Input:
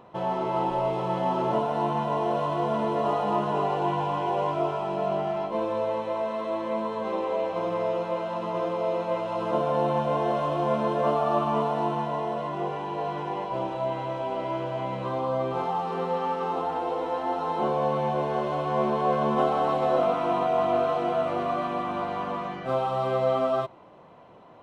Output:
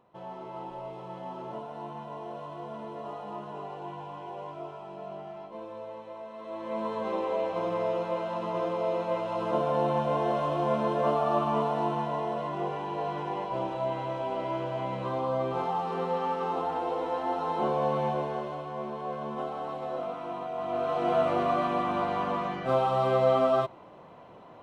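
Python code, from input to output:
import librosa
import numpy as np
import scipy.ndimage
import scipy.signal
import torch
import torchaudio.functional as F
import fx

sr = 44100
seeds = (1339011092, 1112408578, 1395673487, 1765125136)

y = fx.gain(x, sr, db=fx.line((6.32, -13.5), (6.87, -2.0), (18.07, -2.0), (18.74, -11.0), (20.55, -11.0), (21.14, 1.0)))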